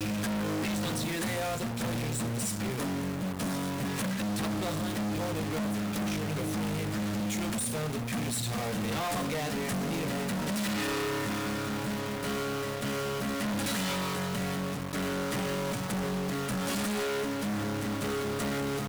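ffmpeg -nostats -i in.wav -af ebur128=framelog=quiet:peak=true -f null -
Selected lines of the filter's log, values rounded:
Integrated loudness:
  I:         -31.8 LUFS
  Threshold: -41.8 LUFS
Loudness range:
  LRA:         0.7 LU
  Threshold: -51.8 LUFS
  LRA low:   -32.1 LUFS
  LRA high:  -31.4 LUFS
True peak:
  Peak:      -26.6 dBFS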